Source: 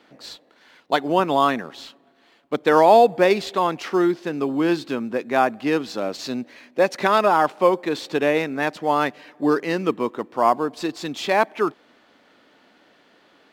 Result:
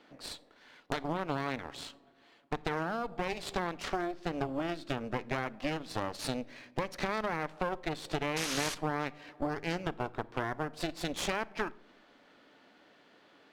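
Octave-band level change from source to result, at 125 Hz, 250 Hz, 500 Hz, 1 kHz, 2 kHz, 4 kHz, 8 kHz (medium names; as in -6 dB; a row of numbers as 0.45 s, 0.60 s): -5.0 dB, -13.5 dB, -17.5 dB, -16.5 dB, -10.5 dB, -8.0 dB, -2.5 dB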